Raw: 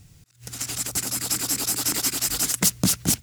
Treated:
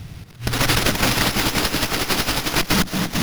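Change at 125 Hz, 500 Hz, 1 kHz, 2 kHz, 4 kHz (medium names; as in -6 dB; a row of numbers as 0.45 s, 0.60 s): +8.0 dB, +12.5 dB, +13.5 dB, +13.5 dB, +7.0 dB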